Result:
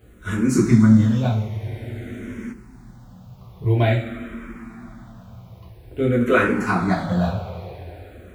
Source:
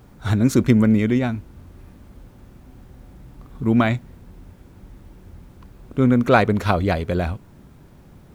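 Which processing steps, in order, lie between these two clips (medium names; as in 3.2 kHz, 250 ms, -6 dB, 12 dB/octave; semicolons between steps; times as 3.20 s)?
two-slope reverb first 0.42 s, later 3.9 s, from -18 dB, DRR -5.5 dB; spectral freeze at 1.50 s, 1.01 s; barber-pole phaser -0.49 Hz; trim -4 dB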